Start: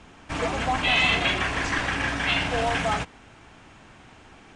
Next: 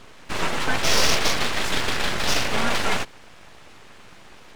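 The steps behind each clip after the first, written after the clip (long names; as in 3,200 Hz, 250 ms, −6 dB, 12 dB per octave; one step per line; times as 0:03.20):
full-wave rectification
level +5 dB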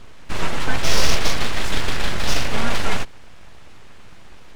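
low-shelf EQ 120 Hz +11.5 dB
level −1.5 dB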